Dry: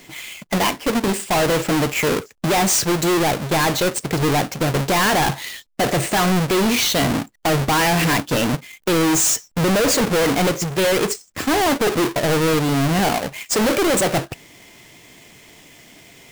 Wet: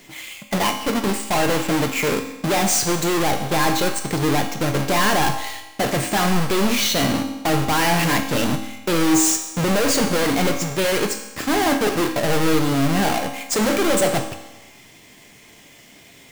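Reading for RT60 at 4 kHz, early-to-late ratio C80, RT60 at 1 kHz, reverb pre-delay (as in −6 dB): 1.1 s, 10.0 dB, 1.1 s, 4 ms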